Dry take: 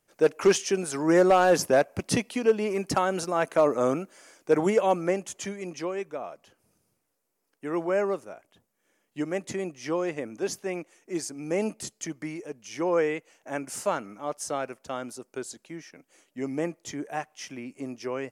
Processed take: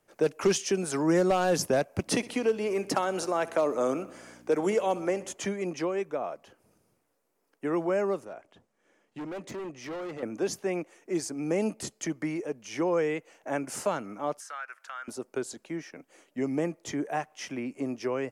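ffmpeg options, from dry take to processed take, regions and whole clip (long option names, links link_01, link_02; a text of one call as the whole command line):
ffmpeg -i in.wav -filter_complex "[0:a]asettb=1/sr,asplit=3[link_01][link_02][link_03];[link_01]atrim=end=2.064[link_04];[link_02]atrim=start=2.06:end=5.33,asetpts=PTS-STARTPTS,afade=type=in:duration=0.004:curve=qsin,afade=type=out:start_time=3.266:duration=0.004:curve=qsin,aeval=exprs='val(0)+0.00501*(sin(2*PI*60*n/s)+sin(2*PI*2*60*n/s)/2+sin(2*PI*3*60*n/s)/3+sin(2*PI*4*60*n/s)/4+sin(2*PI*5*60*n/s)/5)':channel_layout=same,highpass=260,aecho=1:1:63|126|189|252|315:0.106|0.0604|0.0344|0.0196|0.0112,atrim=end_sample=144207[link_05];[link_03]atrim=start=5.326[link_06];[link_04][link_05]acrossfade=duration=0.004:curve1=hsin:curve2=qsin[link_07];[link_07][link_06]acrossfade=duration=0.004:curve1=qsin:curve2=hsin,asettb=1/sr,asplit=3[link_08][link_09][link_10];[link_08]atrim=end=8.254[link_11];[link_09]atrim=start=8.25:end=10.23,asetpts=PTS-STARTPTS,afade=type=in:duration=0.004:curve=qsin,afade=type=out:start_time=1.976:duration=0.004:curve=qsin,lowpass=8200,asoftclip=type=hard:threshold=-35dB,acompressor=threshold=-43dB:ratio=2.5:attack=3.2:release=140:knee=1:detection=peak[link_12];[link_10]atrim=start=10.226[link_13];[link_11][link_12]acrossfade=duration=0.004:curve1=hsin:curve2=qsin[link_14];[link_14][link_13]acrossfade=duration=0.004:curve1=qsin:curve2=hsin,asettb=1/sr,asplit=3[link_15][link_16][link_17];[link_15]atrim=end=14.404[link_18];[link_16]atrim=start=14.4:end=15.08,asetpts=PTS-STARTPTS,afade=type=in:duration=0.004:curve=qsin,afade=type=out:start_time=0.676:duration=0.004:curve=qsin,highpass=frequency=1500:width_type=q:width=3.7,acompressor=threshold=-49dB:ratio=2:attack=3.2:release=140:knee=1:detection=peak[link_19];[link_17]atrim=start=15.076[link_20];[link_18][link_19]acrossfade=duration=0.004:curve1=hsin:curve2=qsin[link_21];[link_21][link_20]acrossfade=duration=0.004:curve1=qsin:curve2=hsin,highshelf=frequency=2300:gain=-8.5,acrossover=split=200|3000[link_22][link_23][link_24];[link_23]acompressor=threshold=-35dB:ratio=2.5[link_25];[link_22][link_25][link_24]amix=inputs=3:normalize=0,bass=frequency=250:gain=-4,treble=frequency=4000:gain=0,volume=6.5dB" out.wav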